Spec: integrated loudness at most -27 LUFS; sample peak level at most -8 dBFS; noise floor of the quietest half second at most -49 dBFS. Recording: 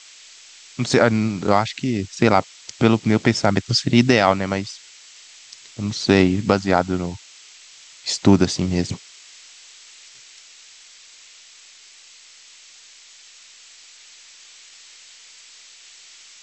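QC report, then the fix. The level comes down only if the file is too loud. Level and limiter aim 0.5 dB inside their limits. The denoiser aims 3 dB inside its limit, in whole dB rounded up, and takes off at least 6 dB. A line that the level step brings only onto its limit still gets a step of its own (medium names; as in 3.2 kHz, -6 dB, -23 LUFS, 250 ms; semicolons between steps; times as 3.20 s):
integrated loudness -19.5 LUFS: fail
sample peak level -1.5 dBFS: fail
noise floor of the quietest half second -47 dBFS: fail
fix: trim -8 dB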